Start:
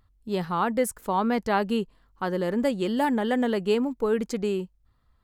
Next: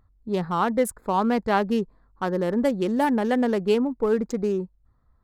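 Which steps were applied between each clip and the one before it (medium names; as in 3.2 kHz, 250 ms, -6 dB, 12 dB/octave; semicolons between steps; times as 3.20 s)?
local Wiener filter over 15 samples; trim +2.5 dB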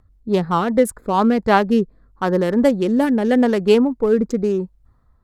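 rotary cabinet horn 5 Hz, later 0.85 Hz, at 0.86 s; trim +8 dB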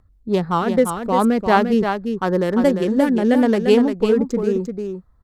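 delay 347 ms -6.5 dB; trim -1 dB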